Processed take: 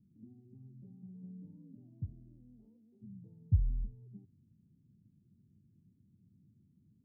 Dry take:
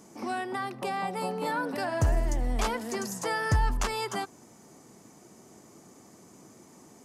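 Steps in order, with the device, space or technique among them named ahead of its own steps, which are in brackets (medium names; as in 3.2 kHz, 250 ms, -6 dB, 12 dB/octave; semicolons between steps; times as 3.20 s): the neighbour's flat through the wall (low-pass 180 Hz 24 dB/octave; peaking EQ 96 Hz +6.5 dB 0.48 oct); 1.54–3.01 s: high-pass 120 Hz -> 530 Hz 12 dB/octave; trim -5.5 dB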